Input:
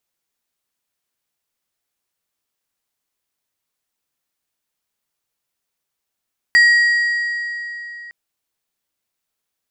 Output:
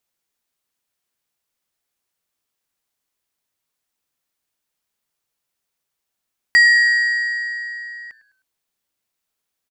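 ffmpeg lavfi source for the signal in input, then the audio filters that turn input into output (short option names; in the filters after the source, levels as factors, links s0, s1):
-f lavfi -i "aevalsrc='0.447*pow(10,-3*t/3.54)*sin(2*PI*1900*t)+0.119*pow(10,-3*t/2.689)*sin(2*PI*4750*t)+0.0316*pow(10,-3*t/2.336)*sin(2*PI*7600*t)+0.00841*pow(10,-3*t/2.184)*sin(2*PI*9500*t)+0.00224*pow(10,-3*t/2.019)*sin(2*PI*12350*t)':d=1.56:s=44100"
-filter_complex "[0:a]asplit=4[s0][s1][s2][s3];[s1]adelay=103,afreqshift=-120,volume=0.126[s4];[s2]adelay=206,afreqshift=-240,volume=0.0501[s5];[s3]adelay=309,afreqshift=-360,volume=0.0202[s6];[s0][s4][s5][s6]amix=inputs=4:normalize=0"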